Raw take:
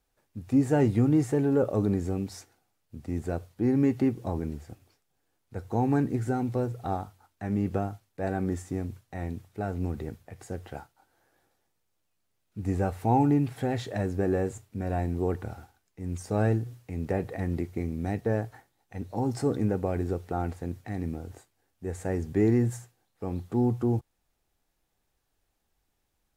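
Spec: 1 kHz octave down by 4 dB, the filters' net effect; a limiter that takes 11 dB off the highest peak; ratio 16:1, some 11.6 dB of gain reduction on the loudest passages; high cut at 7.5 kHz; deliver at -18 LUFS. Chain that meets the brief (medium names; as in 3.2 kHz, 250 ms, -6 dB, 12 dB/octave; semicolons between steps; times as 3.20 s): low-pass 7.5 kHz; peaking EQ 1 kHz -6 dB; compression 16:1, threshold -30 dBFS; trim +24 dB; peak limiter -7 dBFS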